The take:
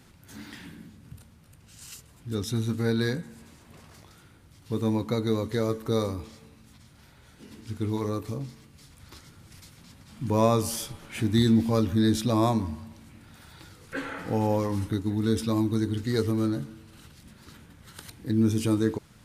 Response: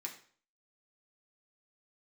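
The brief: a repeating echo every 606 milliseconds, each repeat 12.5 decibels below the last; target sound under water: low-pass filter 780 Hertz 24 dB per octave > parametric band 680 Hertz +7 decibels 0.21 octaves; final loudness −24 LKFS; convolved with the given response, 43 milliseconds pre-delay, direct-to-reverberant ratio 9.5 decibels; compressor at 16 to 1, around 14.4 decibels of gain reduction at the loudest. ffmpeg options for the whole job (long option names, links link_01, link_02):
-filter_complex "[0:a]acompressor=threshold=-31dB:ratio=16,aecho=1:1:606|1212|1818:0.237|0.0569|0.0137,asplit=2[link_01][link_02];[1:a]atrim=start_sample=2205,adelay=43[link_03];[link_02][link_03]afir=irnorm=-1:irlink=0,volume=-8dB[link_04];[link_01][link_04]amix=inputs=2:normalize=0,lowpass=frequency=780:width=0.5412,lowpass=frequency=780:width=1.3066,equalizer=frequency=680:width_type=o:width=0.21:gain=7,volume=13.5dB"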